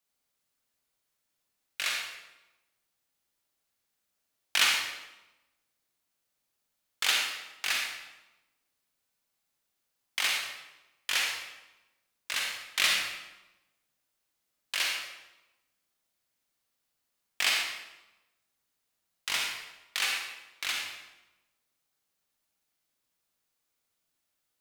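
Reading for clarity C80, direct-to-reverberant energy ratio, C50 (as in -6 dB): 3.5 dB, -0.5 dB, 1.0 dB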